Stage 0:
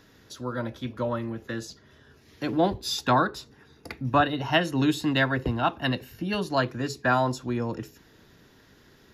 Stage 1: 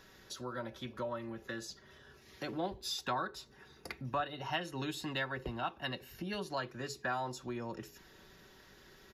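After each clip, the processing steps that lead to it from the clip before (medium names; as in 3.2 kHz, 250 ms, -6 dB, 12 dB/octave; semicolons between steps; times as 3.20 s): peaking EQ 190 Hz -6.5 dB 1.7 oct; comb 5.3 ms, depth 44%; compression 2:1, threshold -41 dBFS, peak gain reduction 14 dB; trim -1.5 dB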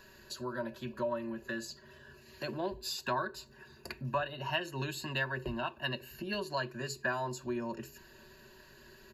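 rippled EQ curve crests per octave 1.4, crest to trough 12 dB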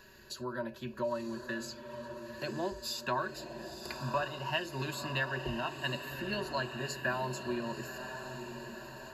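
echo that smears into a reverb 991 ms, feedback 55%, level -8 dB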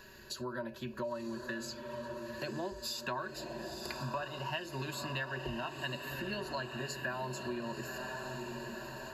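compression 2.5:1, threshold -40 dBFS, peak gain reduction 9 dB; trim +2.5 dB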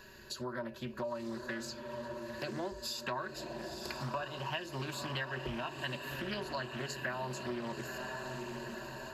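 loudspeaker Doppler distortion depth 0.26 ms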